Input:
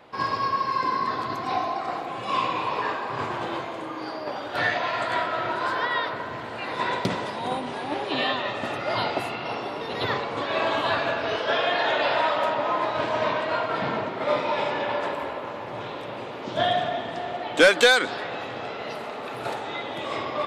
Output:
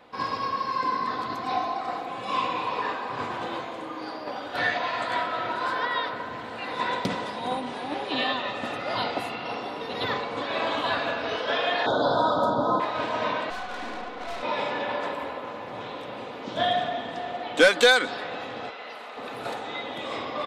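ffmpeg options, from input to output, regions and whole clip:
-filter_complex "[0:a]asettb=1/sr,asplit=3[a][b][c];[a]atrim=end=11.864[d];[b]atrim=start=11.86:end=12.8,asetpts=PTS-STARTPTS,afade=t=in:d=0.004:c=qsin,afade=t=out:st=0.936:d=0.004:c=qsin,asuperstop=centerf=2300:order=12:qfactor=1.2,equalizer=f=120:w=0.36:g=14[e];[c]atrim=start=12.796[f];[d][e]acrossfade=d=0.004:c1=hsin:c2=qsin[g];[g][f]acrossfade=d=0.004:c1=qsin:c2=hsin,asettb=1/sr,asplit=3[h][i][j];[h]atrim=end=13.504[k];[i]atrim=start=13.5:end=14.43,asetpts=PTS-STARTPTS,afade=t=in:d=0.004:c=qsin,afade=t=out:st=0.926:d=0.004:c=qsin,afreqshift=95,aeval=exprs='(tanh(31.6*val(0)+0.7)-tanh(0.7))/31.6':c=same[l];[j]atrim=start=14.426[m];[k][l]acrossfade=d=0.004:c1=hsin:c2=qsin[n];[n][m]acrossfade=d=0.004:c1=qsin:c2=hsin,asettb=1/sr,asplit=3[o][p][q];[o]atrim=end=18.704[r];[p]atrim=start=18.7:end=19.17,asetpts=PTS-STARTPTS,afade=t=in:d=0.004:c=qsin,afade=t=out:st=0.466:d=0.004:c=qsin,acrossover=split=3700[s][t];[t]acompressor=threshold=-54dB:ratio=4:attack=1:release=60[u];[s][u]amix=inputs=2:normalize=0,highpass=f=930:p=1[v];[q]atrim=start=19.166[w];[r][v]acrossfade=d=0.004:c1=hsin:c2=qsin[x];[x][w]acrossfade=d=0.004:c1=qsin:c2=hsin,equalizer=f=3.8k:w=4.9:g=2.5,aecho=1:1:4:0.33,volume=-2.5dB"

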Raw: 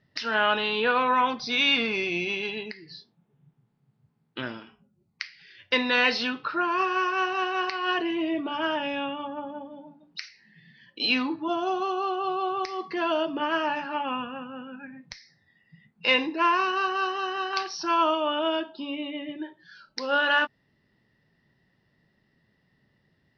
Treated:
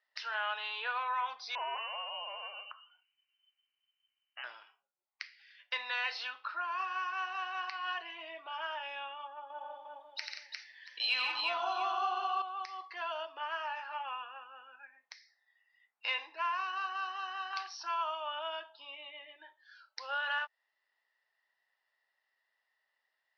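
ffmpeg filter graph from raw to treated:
-filter_complex "[0:a]asettb=1/sr,asplit=3[a][b][c];[a]atrim=end=1.554[d];[b]atrim=start=1.55:end=4.44,asetpts=PTS-STARTPTS,afade=t=in:d=0.004:c=qsin,afade=t=out:st=2.886:d=0.004:c=qsin,lowshelf=f=240:g=-9,lowpass=f=2.7k:t=q:w=0.5098,lowpass=f=2.7k:t=q:w=0.6013,lowpass=f=2.7k:t=q:w=0.9,lowpass=f=2.7k:t=q:w=2.563,afreqshift=-3200[e];[c]atrim=start=4.436[f];[d][e]acrossfade=d=0.004:c1=hsin:c2=qsin[g];[g][f]acrossfade=d=0.004:c1=qsin:c2=hsin,asettb=1/sr,asplit=3[h][i][j];[h]atrim=end=9.504[k];[i]atrim=start=9.5:end=12.42,asetpts=PTS-STARTPTS,afade=t=in:d=0.004:c=qsin,afade=t=out:st=2.916:d=0.004:c=qsin,acontrast=57,aecho=1:1:87|140|179|353|682:0.562|0.447|0.335|0.631|0.141,atrim=end_sample=128772[l];[j]atrim=start=12.416[m];[k][l]acrossfade=d=0.004:c1=hsin:c2=qsin[n];[n][m]acrossfade=d=0.004:c1=qsin:c2=hsin,highpass=f=740:w=0.5412,highpass=f=740:w=1.3066,highshelf=f=4.6k:g=-5.5,acompressor=threshold=-30dB:ratio=1.5,volume=-7dB"

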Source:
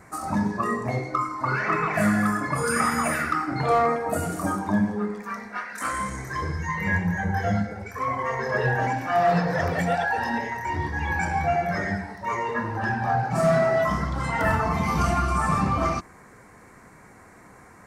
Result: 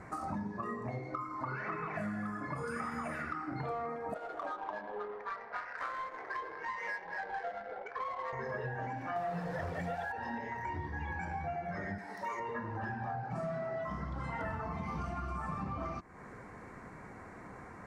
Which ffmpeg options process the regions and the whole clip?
-filter_complex "[0:a]asettb=1/sr,asplit=3[a][b][c];[a]atrim=end=4.144[d];[b]atrim=start=4.14:end=8.33,asetpts=PTS-STARTPTS,afade=t=in:d=0.004:c=qsin,afade=t=out:st=4.186:d=0.004:c=qsin,highpass=f=470:w=0.5412,highpass=f=470:w=1.3066,adynamicsmooth=sensitivity=4:basefreq=1k[e];[c]atrim=start=8.326[f];[d][e]acrossfade=d=0.004:c1=hsin:c2=qsin[g];[g][f]acrossfade=d=0.004:c1=qsin:c2=hsin,asettb=1/sr,asplit=3[h][i][j];[h]atrim=end=9.164[k];[i]atrim=start=9.16:end=10.12,asetpts=PTS-STARTPTS,afade=t=in:d=0.004:c=qsin,afade=t=out:st=0.956:d=0.004:c=qsin,asubboost=boost=9.5:cutoff=77,acontrast=32,acrusher=bits=6:dc=4:mix=0:aa=0.000001[l];[j]atrim=start=10.116[m];[k][l]acrossfade=d=0.004:c1=hsin:c2=qsin[n];[n][m]acrossfade=d=0.004:c1=qsin:c2=hsin,asettb=1/sr,asplit=3[o][p][q];[o]atrim=end=11.984[r];[p]atrim=start=11.98:end=12.4,asetpts=PTS-STARTPTS,afade=t=in:d=0.004:c=qsin,afade=t=out:st=0.416:d=0.004:c=qsin,highpass=260,aemphasis=mode=production:type=75fm[s];[q]atrim=start=12.396[t];[r][s]acrossfade=d=0.004:c1=hsin:c2=qsin[u];[u][t]acrossfade=d=0.004:c1=qsin:c2=hsin,aemphasis=mode=reproduction:type=75fm,acompressor=threshold=-37dB:ratio=6"

